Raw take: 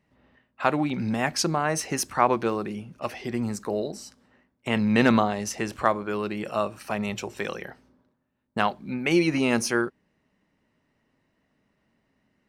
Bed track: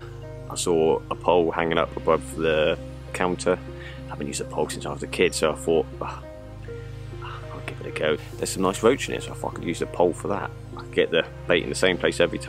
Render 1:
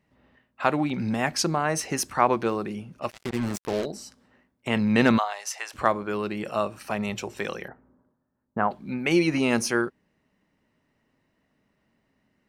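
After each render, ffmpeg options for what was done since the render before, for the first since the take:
-filter_complex "[0:a]asplit=3[a][b][c];[a]afade=t=out:st=3.09:d=0.02[d];[b]acrusher=bits=4:mix=0:aa=0.5,afade=t=in:st=3.09:d=0.02,afade=t=out:st=3.84:d=0.02[e];[c]afade=t=in:st=3.84:d=0.02[f];[d][e][f]amix=inputs=3:normalize=0,asplit=3[g][h][i];[g]afade=t=out:st=5.17:d=0.02[j];[h]highpass=f=730:w=0.5412,highpass=f=730:w=1.3066,afade=t=in:st=5.17:d=0.02,afade=t=out:st=5.73:d=0.02[k];[i]afade=t=in:st=5.73:d=0.02[l];[j][k][l]amix=inputs=3:normalize=0,asettb=1/sr,asplit=3[m][n][o];[m]atrim=end=7.684[p];[n]atrim=start=7.68:end=8.71,asetpts=PTS-STARTPTS,afade=t=in:d=0.004:c=qsin,afade=t=out:st=1.026:d=0.004:c=qsin,lowpass=f=1.6k:w=0.5412,lowpass=f=1.6k:w=1.3066[q];[o]atrim=start=8.706[r];[p][q]acrossfade=d=0.004:c1=hsin:c2=qsin[s];[s][r]acrossfade=d=0.004:c1=qsin:c2=hsin"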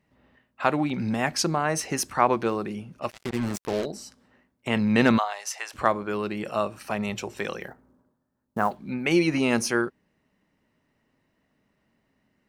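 -filter_complex "[0:a]asettb=1/sr,asplit=3[a][b][c];[a]atrim=end=7.604[d];[b]atrim=start=7.6:end=8.77,asetpts=PTS-STARTPTS,afade=t=in:d=0.004:c=qsin,afade=t=out:st=1.166:d=0.004:c=qsin,acrusher=bits=7:mode=log:mix=0:aa=0.000001[e];[c]atrim=start=8.766[f];[d][e]acrossfade=d=0.004:c1=hsin:c2=qsin[g];[g][f]acrossfade=d=0.004:c1=qsin:c2=hsin"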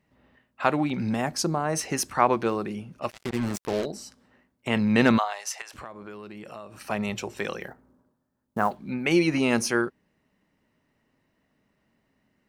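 -filter_complex "[0:a]asettb=1/sr,asplit=3[a][b][c];[a]atrim=end=1.214[d];[b]atrim=start=1.21:end=1.73,asetpts=PTS-STARTPTS,afade=t=in:d=0.004:c=qsin,afade=t=out:st=0.516:d=0.004:c=qsin,equalizer=f=2.4k:w=0.8:g=-9[e];[c]atrim=start=1.726[f];[d][e]acrossfade=d=0.004:c1=hsin:c2=qsin[g];[g][f]acrossfade=d=0.004:c1=qsin:c2=hsin,asettb=1/sr,asplit=3[h][i][j];[h]atrim=end=5.614[k];[i]atrim=start=5.61:end=6.79,asetpts=PTS-STARTPTS,afade=t=in:d=0.004:c=qsin,afade=t=out:st=1.176:d=0.004:c=qsin,acompressor=threshold=-38dB:ratio=5:attack=3.2:release=140:knee=1:detection=peak[l];[j]atrim=start=6.786[m];[k][l]acrossfade=d=0.004:c1=hsin:c2=qsin[n];[n][m]acrossfade=d=0.004:c1=qsin:c2=hsin"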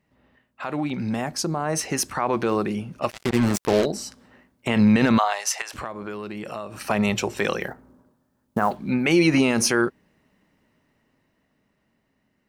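-af "alimiter=limit=-16.5dB:level=0:latency=1:release=53,dynaudnorm=f=500:g=9:m=8dB"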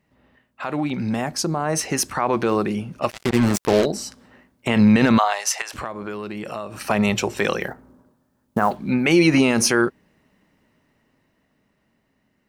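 -af "volume=2.5dB"

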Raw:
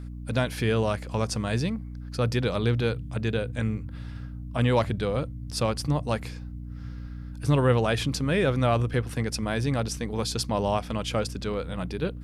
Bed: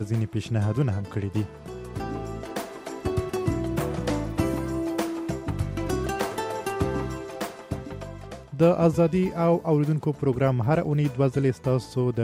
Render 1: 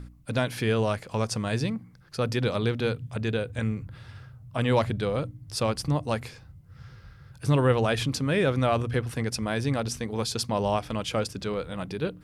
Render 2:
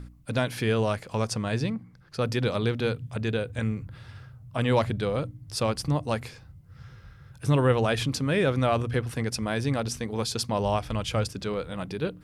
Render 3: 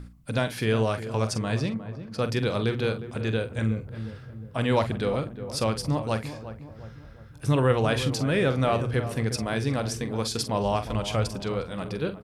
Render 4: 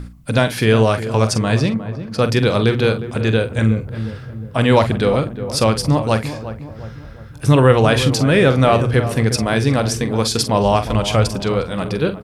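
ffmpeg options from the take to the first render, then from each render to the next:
-af "bandreject=f=60:t=h:w=4,bandreject=f=120:t=h:w=4,bandreject=f=180:t=h:w=4,bandreject=f=240:t=h:w=4,bandreject=f=300:t=h:w=4"
-filter_complex "[0:a]asettb=1/sr,asplit=3[a][b][c];[a]atrim=end=1.334[d];[b]atrim=start=1.33:end=2.19,asetpts=PTS-STARTPTS,afade=t=in:d=0.004:c=qsin,afade=t=out:st=0.856:d=0.004:c=qsin,highshelf=f=6.6k:g=-7[e];[c]atrim=start=2.186[f];[d][e]acrossfade=d=0.004:c1=hsin:c2=qsin[g];[g][f]acrossfade=d=0.004:c1=qsin:c2=hsin,asettb=1/sr,asplit=3[h][i][j];[h]atrim=end=6.834[k];[i]atrim=start=6.83:end=7.79,asetpts=PTS-STARTPTS,afade=t=in:d=0.004:c=qsin,afade=t=out:st=0.956:d=0.004:c=qsin,bandreject=f=4.6k:w=8.6[l];[j]atrim=start=7.786[m];[k][l]acrossfade=d=0.004:c1=hsin:c2=qsin[n];[n][m]acrossfade=d=0.004:c1=qsin:c2=hsin,asettb=1/sr,asplit=3[o][p][q];[o]atrim=end=10.454[r];[p]atrim=start=10.45:end=11.28,asetpts=PTS-STARTPTS,afade=t=in:d=0.004:c=qsin,afade=t=out:st=0.826:d=0.004:c=qsin,asubboost=boost=11.5:cutoff=130[s];[q]atrim=start=11.276[t];[r][s]acrossfade=d=0.004:c1=hsin:c2=qsin[u];[u][t]acrossfade=d=0.004:c1=qsin:c2=hsin"
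-filter_complex "[0:a]asplit=2[a][b];[b]adelay=45,volume=-11dB[c];[a][c]amix=inputs=2:normalize=0,asplit=2[d][e];[e]adelay=358,lowpass=f=1.1k:p=1,volume=-11dB,asplit=2[f][g];[g]adelay=358,lowpass=f=1.1k:p=1,volume=0.5,asplit=2[h][i];[i]adelay=358,lowpass=f=1.1k:p=1,volume=0.5,asplit=2[j][k];[k]adelay=358,lowpass=f=1.1k:p=1,volume=0.5,asplit=2[l][m];[m]adelay=358,lowpass=f=1.1k:p=1,volume=0.5[n];[d][f][h][j][l][n]amix=inputs=6:normalize=0"
-af "volume=10.5dB,alimiter=limit=-1dB:level=0:latency=1"

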